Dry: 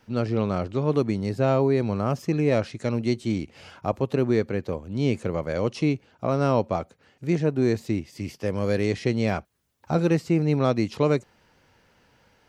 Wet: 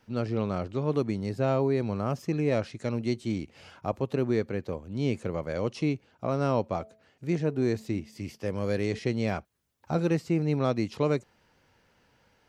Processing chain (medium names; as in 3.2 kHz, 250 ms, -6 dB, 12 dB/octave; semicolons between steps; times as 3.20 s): 6.67–8.99 s: de-hum 217.8 Hz, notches 3; trim -4.5 dB